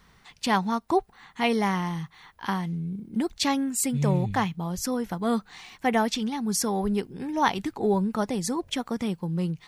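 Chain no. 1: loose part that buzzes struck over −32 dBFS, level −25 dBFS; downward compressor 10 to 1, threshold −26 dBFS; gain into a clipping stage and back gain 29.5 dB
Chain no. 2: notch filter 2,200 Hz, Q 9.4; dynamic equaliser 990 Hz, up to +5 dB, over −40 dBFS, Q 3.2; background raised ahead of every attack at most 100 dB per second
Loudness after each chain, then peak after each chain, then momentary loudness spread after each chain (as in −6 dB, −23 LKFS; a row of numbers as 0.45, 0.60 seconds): −34.0, −26.0 LKFS; −29.5, −7.5 dBFS; 6, 7 LU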